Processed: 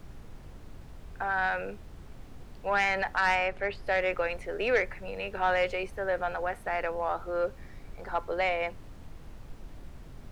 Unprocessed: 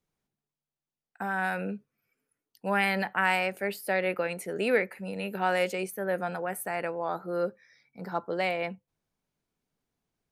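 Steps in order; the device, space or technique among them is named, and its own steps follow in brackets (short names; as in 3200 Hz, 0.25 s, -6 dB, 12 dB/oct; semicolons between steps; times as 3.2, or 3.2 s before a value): aircraft cabin announcement (BPF 470–3200 Hz; soft clip -19.5 dBFS, distortion -17 dB; brown noise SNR 11 dB); 3.35–3.87 high shelf 7700 Hz -11.5 dB; gain +3 dB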